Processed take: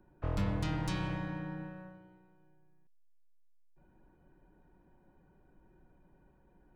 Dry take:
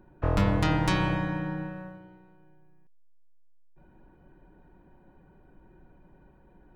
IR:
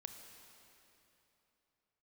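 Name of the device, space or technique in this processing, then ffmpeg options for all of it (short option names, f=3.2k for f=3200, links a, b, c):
one-band saturation: -filter_complex "[0:a]acrossover=split=260|3900[a][b][c];[b]asoftclip=type=tanh:threshold=-29.5dB[d];[a][d][c]amix=inputs=3:normalize=0,volume=-8dB"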